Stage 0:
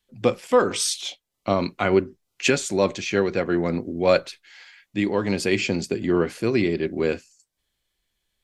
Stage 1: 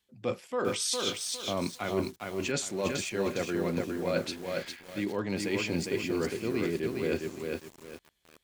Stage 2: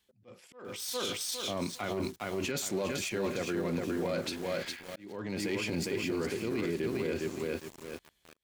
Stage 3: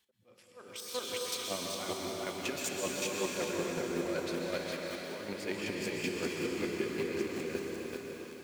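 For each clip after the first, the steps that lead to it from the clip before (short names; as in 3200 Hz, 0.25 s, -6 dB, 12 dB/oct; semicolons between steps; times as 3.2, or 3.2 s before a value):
HPF 61 Hz 12 dB/oct; reverse; compressor 10:1, threshold -28 dBFS, peak gain reduction 16 dB; reverse; lo-fi delay 0.407 s, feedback 35%, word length 8-bit, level -3 dB
self-modulated delay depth 0.061 ms; limiter -27 dBFS, peak gain reduction 10.5 dB; auto swell 0.499 s; gain +3 dB
low shelf 150 Hz -9.5 dB; chopper 5.3 Hz, depth 60%, duty 25%; plate-style reverb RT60 4.4 s, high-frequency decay 0.95×, pre-delay 0.11 s, DRR -1.5 dB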